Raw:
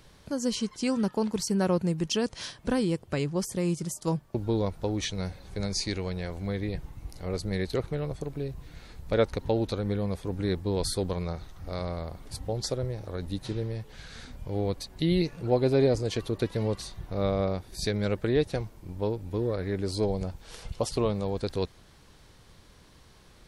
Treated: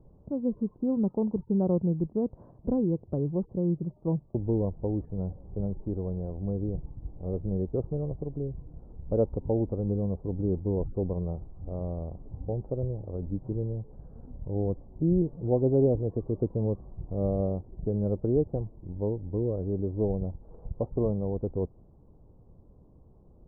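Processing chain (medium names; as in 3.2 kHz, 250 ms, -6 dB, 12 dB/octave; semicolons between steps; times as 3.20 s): Bessel low-pass 500 Hz, order 8; trim +1.5 dB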